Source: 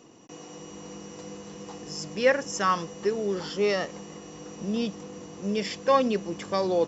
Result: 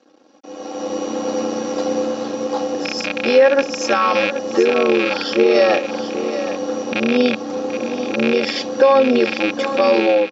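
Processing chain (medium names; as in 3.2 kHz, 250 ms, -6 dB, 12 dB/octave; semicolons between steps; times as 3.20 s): rattle on loud lows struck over -39 dBFS, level -18 dBFS; peaking EQ 710 Hz +4 dB 1.5 oct; in parallel at +1 dB: compression, threshold -32 dBFS, peak gain reduction 17.5 dB; on the sum: peak limiter -15.5 dBFS, peak gain reduction 9.5 dB; level rider gain up to 16.5 dB; crossover distortion -47.5 dBFS; granular stretch 1.5×, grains 22 ms; cabinet simulation 290–4700 Hz, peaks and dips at 1 kHz -8 dB, 2 kHz -9 dB, 2.9 kHz -7 dB; on a send: delay 773 ms -11 dB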